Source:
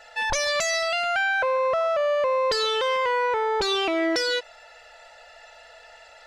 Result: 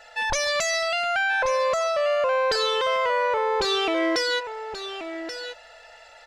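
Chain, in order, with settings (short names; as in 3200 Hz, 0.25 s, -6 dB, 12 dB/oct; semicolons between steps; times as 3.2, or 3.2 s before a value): echo 1.131 s -10 dB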